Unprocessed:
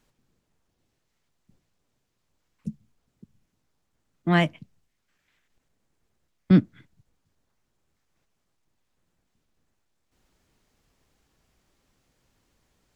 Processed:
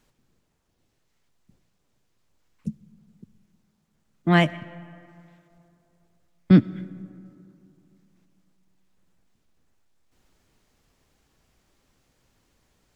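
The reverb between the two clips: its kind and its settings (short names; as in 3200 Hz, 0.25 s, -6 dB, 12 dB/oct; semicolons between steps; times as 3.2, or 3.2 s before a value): digital reverb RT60 2.8 s, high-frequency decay 0.45×, pre-delay 45 ms, DRR 19 dB; gain +2.5 dB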